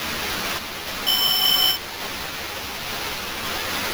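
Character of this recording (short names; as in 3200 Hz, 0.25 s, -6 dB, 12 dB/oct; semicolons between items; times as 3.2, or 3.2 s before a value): a quantiser's noise floor 6-bit, dither triangular; random-step tremolo; aliases and images of a low sample rate 8400 Hz, jitter 0%; a shimmering, thickened sound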